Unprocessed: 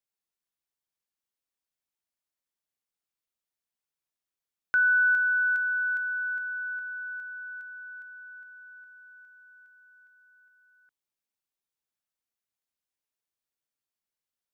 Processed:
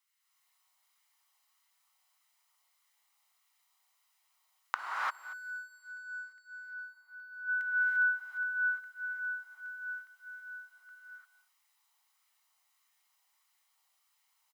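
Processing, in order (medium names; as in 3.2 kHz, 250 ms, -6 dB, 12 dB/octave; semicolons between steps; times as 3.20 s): band-stop 1.7 kHz, Q 6.8; comb 1 ms, depth 43%; 4.79–7.34 s: waveshaping leveller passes 3; compression 1.5:1, threshold -43 dBFS, peak gain reduction 6 dB; inverted gate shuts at -39 dBFS, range -30 dB; LFO high-pass sine 1.6 Hz 800–1700 Hz; delay 232 ms -18.5 dB; gated-style reverb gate 370 ms rising, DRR -5.5 dB; trim +8 dB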